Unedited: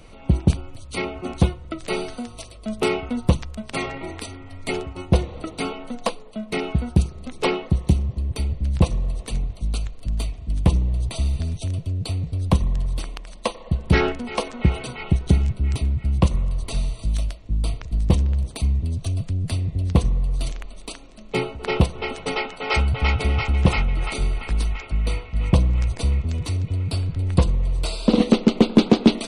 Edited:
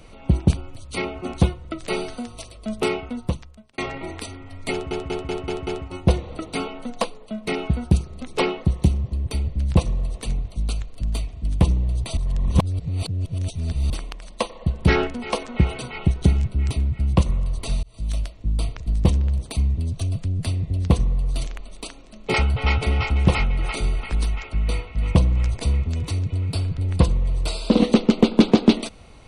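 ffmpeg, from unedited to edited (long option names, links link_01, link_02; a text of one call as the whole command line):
ffmpeg -i in.wav -filter_complex "[0:a]asplit=11[link_01][link_02][link_03][link_04][link_05][link_06][link_07][link_08][link_09][link_10][link_11];[link_01]atrim=end=3.78,asetpts=PTS-STARTPTS,afade=type=out:start_time=2.72:duration=1.06[link_12];[link_02]atrim=start=3.78:end=4.912,asetpts=PTS-STARTPTS,afade=type=in:duration=0.004:curve=hsin[link_13];[link_03]atrim=start=4.718:end=4.912[link_14];[link_04]atrim=start=4.718:end=4.912[link_15];[link_05]atrim=start=4.718:end=4.912[link_16];[link_06]atrim=start=4.718:end=4.912[link_17];[link_07]atrim=start=4.718:end=11.222[link_18];[link_08]atrim=start=11.218:end=12.952,asetpts=PTS-STARTPTS,areverse[link_19];[link_09]atrim=start=12.948:end=16.88,asetpts=PTS-STARTPTS,afade=type=out:start_time=3.928:duration=0.004:curve=hsin[link_20];[link_10]atrim=start=16.88:end=21.392,asetpts=PTS-STARTPTS,afade=type=in:duration=0.36[link_21];[link_11]atrim=start=22.718[link_22];[link_12][link_13]concat=n=2:v=0:a=1[link_23];[link_23][link_14]acrossfade=duration=0.004:curve1=hsin:curve2=hsin[link_24];[link_24][link_15]acrossfade=duration=0.004:curve1=hsin:curve2=hsin[link_25];[link_25][link_16]acrossfade=duration=0.004:curve1=hsin:curve2=hsin[link_26];[link_26][link_17]acrossfade=duration=0.004:curve1=hsin:curve2=hsin[link_27];[link_27][link_18]acrossfade=duration=0.004:curve1=hsin:curve2=hsin[link_28];[link_28][link_19]acrossfade=duration=0.004:curve1=hsin:curve2=hsin[link_29];[link_20][link_21]concat=n=2:v=0:a=1[link_30];[link_29][link_30]acrossfade=duration=0.004:curve1=hsin:curve2=hsin[link_31];[link_31][link_22]acrossfade=duration=0.004:curve1=hsin:curve2=hsin" out.wav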